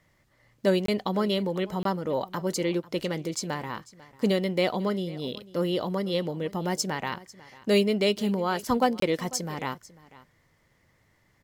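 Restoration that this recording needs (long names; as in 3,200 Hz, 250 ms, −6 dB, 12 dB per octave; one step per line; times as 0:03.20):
clipped peaks rebuilt −12 dBFS
repair the gap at 0:00.86/0:01.83/0:09.00, 23 ms
echo removal 496 ms −20 dB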